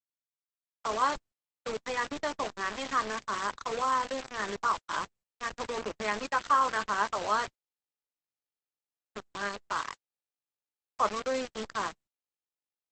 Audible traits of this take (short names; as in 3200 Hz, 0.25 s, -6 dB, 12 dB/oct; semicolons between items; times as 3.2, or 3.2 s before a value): a quantiser's noise floor 6-bit, dither none; Opus